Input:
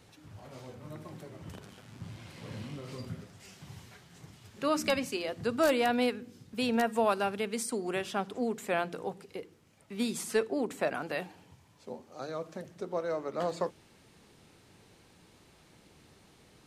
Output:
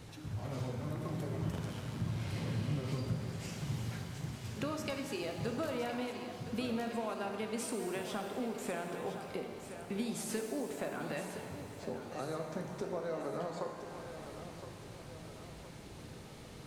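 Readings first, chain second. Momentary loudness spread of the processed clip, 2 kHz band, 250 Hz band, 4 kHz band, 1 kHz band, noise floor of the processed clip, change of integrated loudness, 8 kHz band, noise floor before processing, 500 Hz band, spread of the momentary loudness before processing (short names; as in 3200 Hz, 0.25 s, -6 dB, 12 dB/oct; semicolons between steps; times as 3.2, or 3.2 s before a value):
12 LU, -7.5 dB, -3.5 dB, -6.0 dB, -7.5 dB, -50 dBFS, -7.0 dB, -3.5 dB, -61 dBFS, -6.5 dB, 19 LU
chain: compressor 6:1, threshold -43 dBFS, peak gain reduction 19.5 dB; low shelf 250 Hz +7.5 dB; thinning echo 1.015 s, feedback 54%, high-pass 210 Hz, level -10.5 dB; shimmer reverb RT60 2.2 s, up +7 st, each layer -8 dB, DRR 4 dB; gain +4 dB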